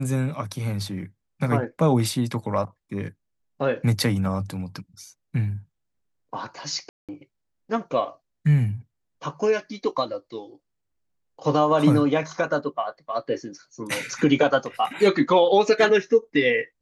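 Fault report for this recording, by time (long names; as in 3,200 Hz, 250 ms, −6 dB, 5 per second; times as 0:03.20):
0:06.89–0:07.09: drop-out 197 ms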